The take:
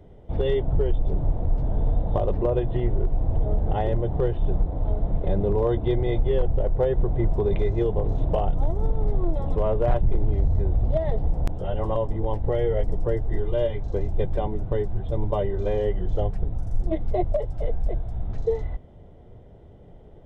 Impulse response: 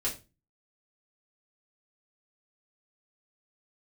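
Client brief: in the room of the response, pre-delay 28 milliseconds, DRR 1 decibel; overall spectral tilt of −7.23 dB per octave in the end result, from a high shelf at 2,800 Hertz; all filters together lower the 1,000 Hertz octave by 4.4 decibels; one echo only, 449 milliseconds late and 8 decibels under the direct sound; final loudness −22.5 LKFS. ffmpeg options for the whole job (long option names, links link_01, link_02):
-filter_complex "[0:a]equalizer=frequency=1000:width_type=o:gain=-6.5,highshelf=frequency=2800:gain=-3,aecho=1:1:449:0.398,asplit=2[link_01][link_02];[1:a]atrim=start_sample=2205,adelay=28[link_03];[link_02][link_03]afir=irnorm=-1:irlink=0,volume=-6dB[link_04];[link_01][link_04]amix=inputs=2:normalize=0,volume=-1.5dB"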